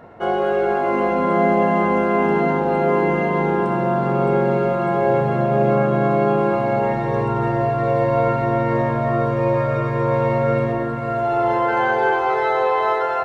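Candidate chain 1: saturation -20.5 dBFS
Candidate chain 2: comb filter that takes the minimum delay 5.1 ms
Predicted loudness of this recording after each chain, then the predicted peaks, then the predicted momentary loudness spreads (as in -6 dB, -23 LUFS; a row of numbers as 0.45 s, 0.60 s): -24.0 LUFS, -20.5 LUFS; -20.5 dBFS, -7.5 dBFS; 1 LU, 3 LU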